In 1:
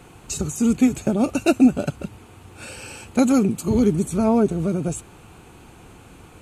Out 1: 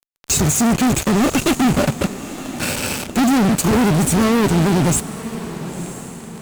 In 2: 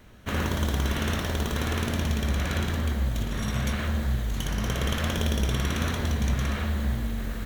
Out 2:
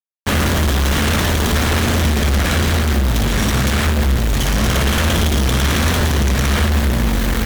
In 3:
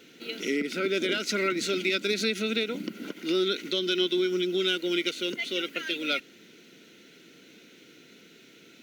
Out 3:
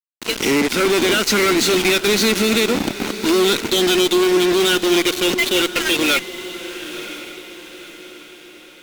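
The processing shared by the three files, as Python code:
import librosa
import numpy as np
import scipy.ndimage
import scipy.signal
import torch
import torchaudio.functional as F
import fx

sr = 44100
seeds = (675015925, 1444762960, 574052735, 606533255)

y = fx.fuzz(x, sr, gain_db=38.0, gate_db=-36.0)
y = fx.echo_diffused(y, sr, ms=997, feedback_pct=44, wet_db=-13)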